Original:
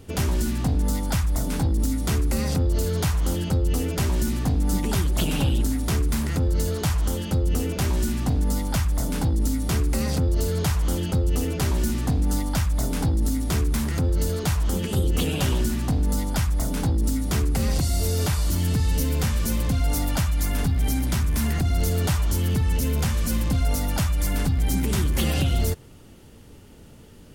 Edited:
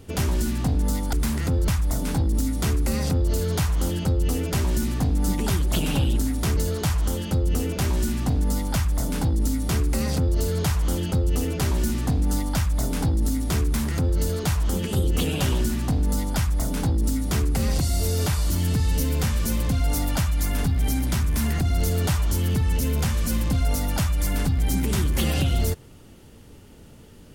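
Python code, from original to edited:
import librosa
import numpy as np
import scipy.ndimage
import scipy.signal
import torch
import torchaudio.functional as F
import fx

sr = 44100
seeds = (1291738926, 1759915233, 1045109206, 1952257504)

y = fx.edit(x, sr, fx.move(start_s=6.02, length_s=0.55, to_s=1.13), tone=tone)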